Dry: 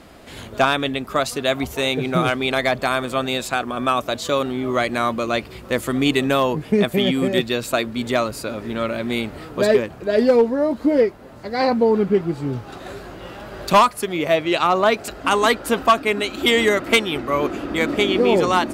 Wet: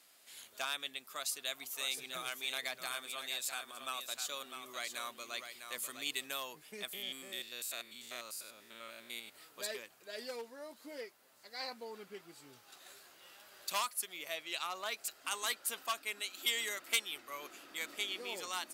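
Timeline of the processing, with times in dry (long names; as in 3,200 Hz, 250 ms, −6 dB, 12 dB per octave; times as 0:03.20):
0:00.98–0:06.28: single-tap delay 652 ms −7.5 dB
0:06.93–0:09.35: spectrum averaged block by block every 100 ms
whole clip: first difference; level −7 dB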